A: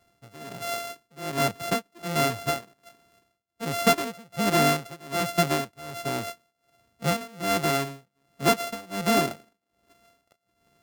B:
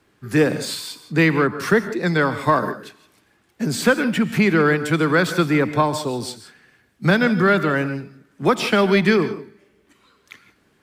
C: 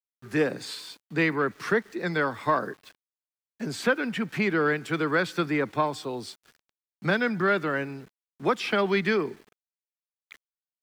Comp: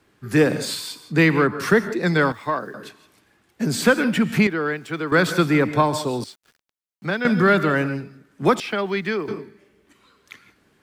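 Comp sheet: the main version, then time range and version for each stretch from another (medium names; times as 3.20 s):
B
2.32–2.74 s: from C
4.47–5.12 s: from C
6.24–7.25 s: from C
8.60–9.28 s: from C
not used: A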